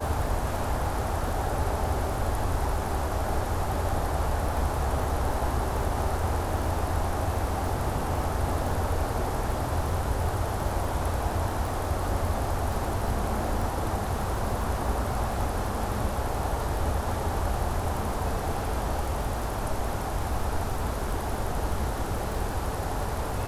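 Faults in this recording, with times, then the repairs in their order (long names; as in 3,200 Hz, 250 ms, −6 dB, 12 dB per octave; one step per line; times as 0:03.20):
surface crackle 28 per second −33 dBFS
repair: click removal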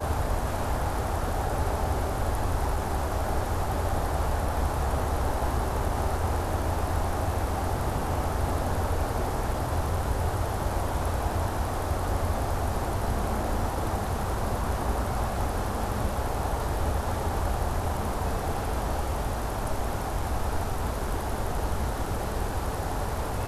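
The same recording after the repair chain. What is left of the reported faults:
none of them is left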